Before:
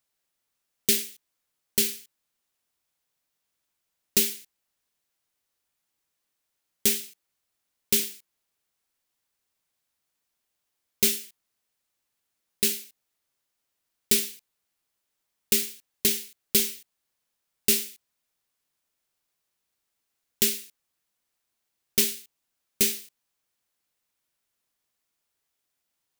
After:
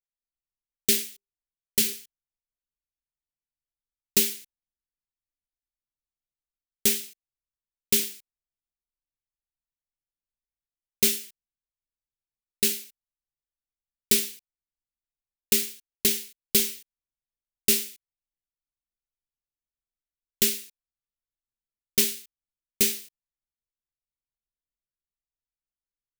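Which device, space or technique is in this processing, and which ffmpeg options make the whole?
voice memo with heavy noise removal: -filter_complex "[0:a]asettb=1/sr,asplit=3[s0][s1][s2];[s0]atrim=end=1.044[s3];[s1]atrim=start=1.04:end=1.93,asetpts=PTS-STARTPTS,afade=t=in:d=0.004:c=qsin,afade=t=out:st=0.886:d=0.004:c=qsin,bandreject=f=50:t=h:w=6,bandreject=f=100:t=h:w=6,bandreject=f=150:t=h:w=6,bandreject=f=200:t=h:w=6,bandreject=f=250:t=h:w=6,bandreject=f=300:t=h:w=6,bandreject=f=350:t=h:w=6,bandreject=f=400:t=h:w=6,bandreject=f=450:t=h:w=6[s4];[s2]atrim=start=1.926[s5];[s3][s4]acrossfade=d=0.004:c1=hsin:c2=qsin[s6];[s6][s5]acrossfade=d=0.004:c1=qsin:c2=hsin,anlmdn=0.000631,dynaudnorm=f=170:g=3:m=3.55,volume=0.562"

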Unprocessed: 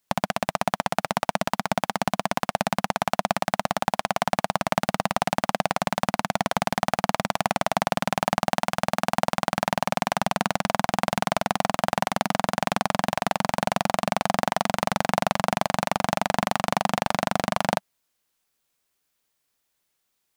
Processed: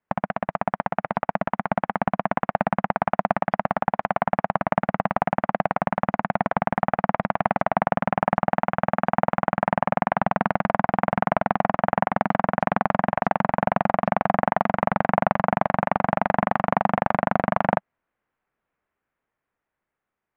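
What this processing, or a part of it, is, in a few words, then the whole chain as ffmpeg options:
action camera in a waterproof case: -af "lowpass=f=2000:w=0.5412,lowpass=f=2000:w=1.3066,dynaudnorm=f=380:g=9:m=2.11" -ar 48000 -c:a aac -b:a 128k

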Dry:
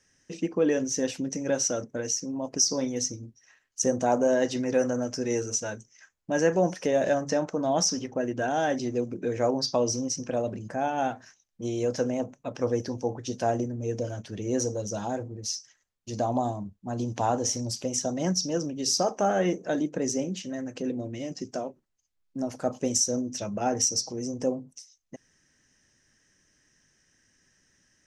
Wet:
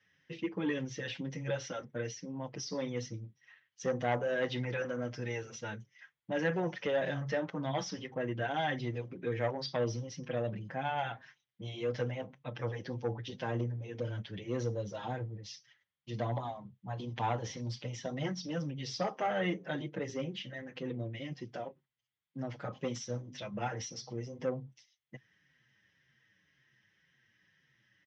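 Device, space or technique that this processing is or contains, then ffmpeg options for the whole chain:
barber-pole flanger into a guitar amplifier: -filter_complex "[0:a]asplit=2[s0][s1];[s1]adelay=6.6,afreqshift=-1.9[s2];[s0][s2]amix=inputs=2:normalize=1,asoftclip=type=tanh:threshold=0.106,highpass=110,equalizer=f=130:t=q:w=4:g=9,equalizer=f=260:t=q:w=4:g=-8,equalizer=f=400:t=q:w=4:g=-5,equalizer=f=650:t=q:w=4:g=-6,equalizer=f=2000:t=q:w=4:g=7,equalizer=f=3300:t=q:w=4:g=8,lowpass=f=3900:w=0.5412,lowpass=f=3900:w=1.3066,volume=0.891"

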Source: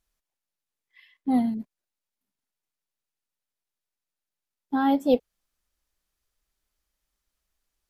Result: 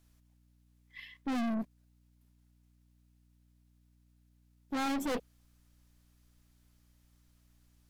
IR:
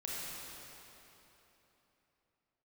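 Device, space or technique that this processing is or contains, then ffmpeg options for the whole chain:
valve amplifier with mains hum: -af "aeval=exprs='(tanh(89.1*val(0)+0.3)-tanh(0.3))/89.1':c=same,aeval=exprs='val(0)+0.000224*(sin(2*PI*60*n/s)+sin(2*PI*2*60*n/s)/2+sin(2*PI*3*60*n/s)/3+sin(2*PI*4*60*n/s)/4+sin(2*PI*5*60*n/s)/5)':c=same,volume=2.37"

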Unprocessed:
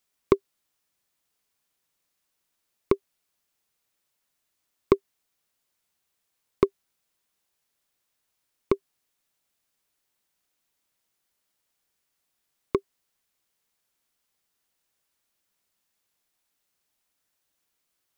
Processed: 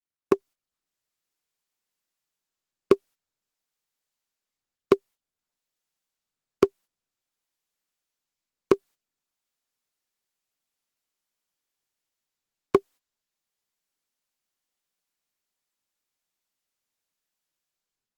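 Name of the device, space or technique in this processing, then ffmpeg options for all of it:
video call: -af "highpass=150,dynaudnorm=f=120:g=9:m=5.62,agate=range=0.1:threshold=0.00708:ratio=16:detection=peak,volume=0.841" -ar 48000 -c:a libopus -b:a 16k

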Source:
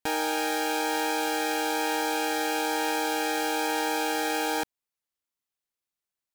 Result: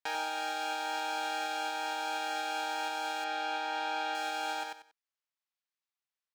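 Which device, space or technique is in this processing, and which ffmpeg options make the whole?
DJ mixer with the lows and highs turned down: -filter_complex "[0:a]aecho=1:1:93|186|279:0.631|0.145|0.0334,asettb=1/sr,asplit=3[s0][s1][s2];[s0]atrim=end=3.244[s3];[s1]atrim=start=3.24:end=4.15,asetpts=PTS-STARTPTS,afade=t=in:d=0.004:c=qsin,afade=t=out:st=0.906:d=0.004:c=qsin,acrossover=split=5100[s4][s5];[s5]acompressor=threshold=0.00398:ratio=4:attack=1:release=60[s6];[s4][s6]amix=inputs=2:normalize=0[s7];[s2]atrim=start=4.146[s8];[s3][s7]acrossfade=d=0.004:c1=hsin:c2=qsin[s9];[s9][s8]acrossfade=d=0.004:c1=qsin:c2=hsin,acrossover=split=570 6000:gain=0.1 1 0.2[s10][s11][s12];[s10][s11][s12]amix=inputs=3:normalize=0,alimiter=limit=0.0944:level=0:latency=1:release=446,volume=0.668"

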